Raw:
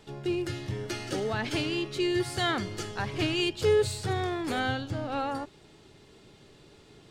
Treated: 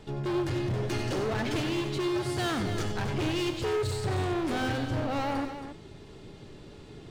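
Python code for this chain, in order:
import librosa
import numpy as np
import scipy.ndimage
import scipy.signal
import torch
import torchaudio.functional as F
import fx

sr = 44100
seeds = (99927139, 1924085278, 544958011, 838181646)

p1 = fx.tilt_eq(x, sr, slope=-1.5)
p2 = fx.rider(p1, sr, range_db=10, speed_s=0.5)
p3 = p1 + (p2 * 10.0 ** (1.5 / 20.0))
p4 = np.clip(p3, -10.0 ** (-23.5 / 20.0), 10.0 ** (-23.5 / 20.0))
p5 = fx.echo_multitap(p4, sr, ms=(94, 272), db=(-9.5, -10.0))
y = p5 * 10.0 ** (-4.5 / 20.0)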